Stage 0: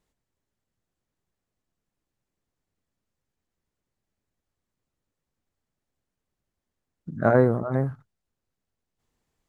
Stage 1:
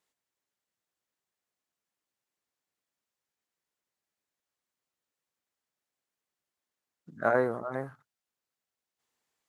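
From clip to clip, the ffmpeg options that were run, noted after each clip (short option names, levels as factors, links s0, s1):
-af "highpass=f=990:p=1"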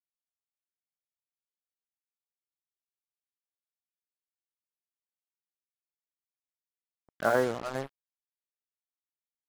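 -af "acrusher=bits=5:mix=0:aa=0.5"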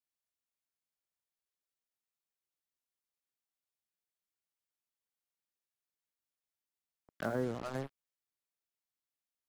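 -filter_complex "[0:a]acrossover=split=320[s0][s1];[s1]acompressor=threshold=0.0126:ratio=6[s2];[s0][s2]amix=inputs=2:normalize=0"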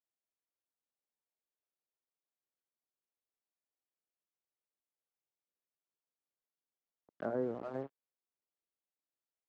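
-af "bandpass=f=450:t=q:w=0.8:csg=0,volume=1.12"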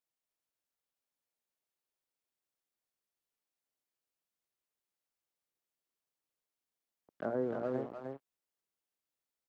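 -af "aecho=1:1:303:0.631,volume=1.12"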